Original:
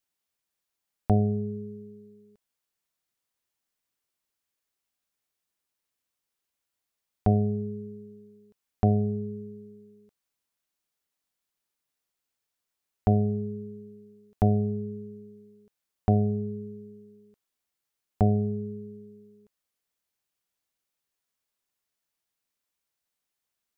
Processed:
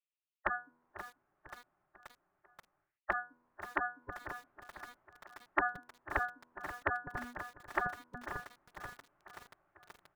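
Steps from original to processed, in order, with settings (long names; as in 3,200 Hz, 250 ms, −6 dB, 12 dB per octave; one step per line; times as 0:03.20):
on a send: repeating echo 1,160 ms, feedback 53%, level −21.5 dB
on the sum: wrong playback speed 33 rpm record played at 78 rpm
in parallel at +2 dB: downward compressor 6 to 1, threshold −36 dBFS, peak gain reduction 16 dB
on the sum: low-pass filter 1,400 Hz 24 dB per octave
parametric band 65 Hz −7.5 dB 0.81 octaves
gate on every frequency bin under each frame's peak −25 dB weak
speech leveller within 4 dB 0.5 s
feedback echo at a low word length 531 ms, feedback 80%, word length 10 bits, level −12.5 dB
level +15.5 dB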